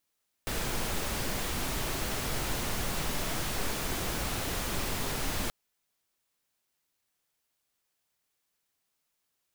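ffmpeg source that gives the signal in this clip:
-f lavfi -i "anoisesrc=c=pink:a=0.129:d=5.03:r=44100:seed=1"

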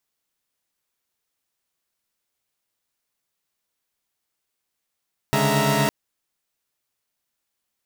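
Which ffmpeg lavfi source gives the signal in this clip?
-f lavfi -i "aevalsrc='0.0794*((2*mod(138.59*t,1)-1)+(2*mod(146.83*t,1)-1)+(2*mod(207.65*t,1)-1)+(2*mod(659.26*t,1)-1)+(2*mod(932.33*t,1)-1))':d=0.56:s=44100"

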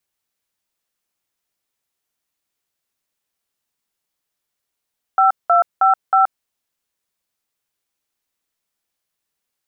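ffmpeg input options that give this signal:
-f lavfi -i "aevalsrc='0.237*clip(min(mod(t,0.316),0.126-mod(t,0.316))/0.002,0,1)*(eq(floor(t/0.316),0)*(sin(2*PI*770*mod(t,0.316))+sin(2*PI*1336*mod(t,0.316)))+eq(floor(t/0.316),1)*(sin(2*PI*697*mod(t,0.316))+sin(2*PI*1336*mod(t,0.316)))+eq(floor(t/0.316),2)*(sin(2*PI*770*mod(t,0.316))+sin(2*PI*1336*mod(t,0.316)))+eq(floor(t/0.316),3)*(sin(2*PI*770*mod(t,0.316))+sin(2*PI*1336*mod(t,0.316))))':d=1.264:s=44100"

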